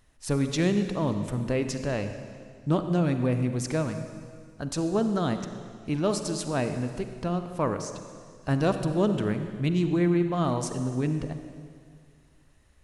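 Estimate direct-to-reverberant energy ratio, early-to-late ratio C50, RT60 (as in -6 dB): 7.5 dB, 8.0 dB, 2.1 s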